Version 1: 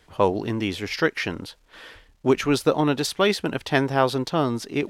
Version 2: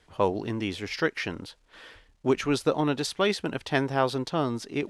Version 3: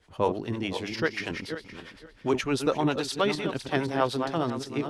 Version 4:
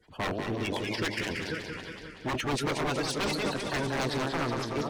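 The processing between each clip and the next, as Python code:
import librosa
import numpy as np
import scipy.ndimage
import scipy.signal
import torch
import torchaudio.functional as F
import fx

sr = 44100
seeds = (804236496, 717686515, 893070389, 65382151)

y1 = scipy.signal.sosfilt(scipy.signal.butter(4, 11000.0, 'lowpass', fs=sr, output='sos'), x)
y1 = F.gain(torch.from_numpy(y1), -4.5).numpy()
y2 = fx.reverse_delay_fb(y1, sr, ms=258, feedback_pct=43, wet_db=-7.0)
y2 = fx.harmonic_tremolo(y2, sr, hz=9.8, depth_pct=70, crossover_hz=440.0)
y2 = F.gain(torch.from_numpy(y2), 2.0).numpy()
y3 = fx.spec_quant(y2, sr, step_db=30)
y3 = 10.0 ** (-24.5 / 20.0) * (np.abs((y3 / 10.0 ** (-24.5 / 20.0) + 3.0) % 4.0 - 2.0) - 1.0)
y3 = fx.echo_warbled(y3, sr, ms=186, feedback_pct=62, rate_hz=2.8, cents=121, wet_db=-6.0)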